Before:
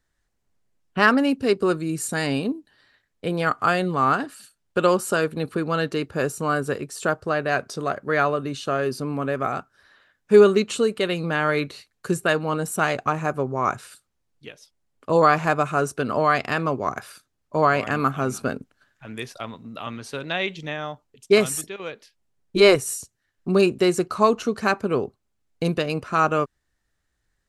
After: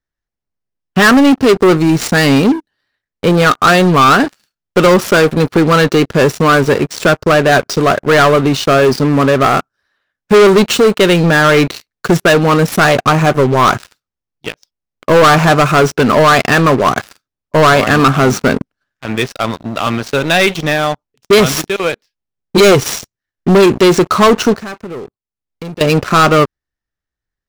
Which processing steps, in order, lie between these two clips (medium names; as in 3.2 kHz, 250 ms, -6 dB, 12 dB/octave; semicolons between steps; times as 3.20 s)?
median filter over 5 samples; peaking EQ 5.5 kHz +5 dB 0.28 oct; waveshaping leveller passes 5; 24.56–25.81 s: compression 2:1, threshold -39 dBFS, peak gain reduction 17 dB